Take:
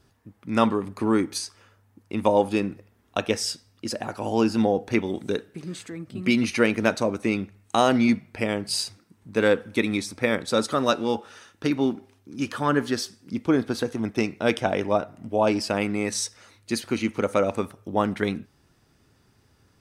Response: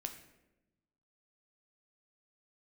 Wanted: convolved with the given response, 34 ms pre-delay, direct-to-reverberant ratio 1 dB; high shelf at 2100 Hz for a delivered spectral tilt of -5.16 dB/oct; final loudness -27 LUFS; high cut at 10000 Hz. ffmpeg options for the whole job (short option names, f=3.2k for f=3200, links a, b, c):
-filter_complex "[0:a]lowpass=10k,highshelf=f=2.1k:g=-5.5,asplit=2[a][b];[1:a]atrim=start_sample=2205,adelay=34[c];[b][c]afir=irnorm=-1:irlink=0,volume=1dB[d];[a][d]amix=inputs=2:normalize=0,volume=-4dB"